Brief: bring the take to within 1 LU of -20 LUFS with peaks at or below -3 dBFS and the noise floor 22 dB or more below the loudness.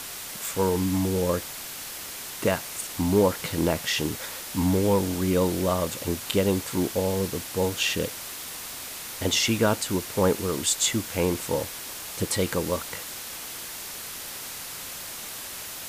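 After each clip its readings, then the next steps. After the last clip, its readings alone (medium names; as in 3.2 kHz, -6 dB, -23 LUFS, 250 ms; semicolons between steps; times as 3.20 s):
noise floor -38 dBFS; noise floor target -49 dBFS; loudness -27.0 LUFS; peak level -9.5 dBFS; loudness target -20.0 LUFS
-> noise reduction 11 dB, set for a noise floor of -38 dBFS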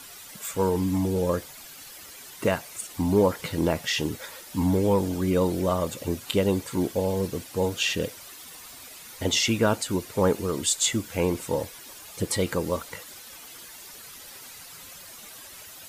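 noise floor -45 dBFS; noise floor target -48 dBFS
-> noise reduction 6 dB, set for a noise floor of -45 dBFS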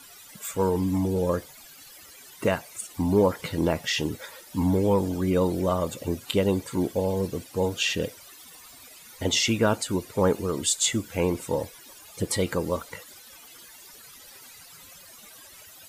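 noise floor -49 dBFS; loudness -26.0 LUFS; peak level -10.0 dBFS; loudness target -20.0 LUFS
-> trim +6 dB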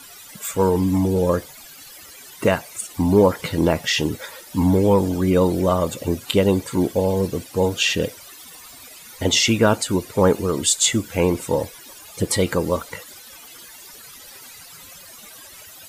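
loudness -20.0 LUFS; peak level -4.0 dBFS; noise floor -43 dBFS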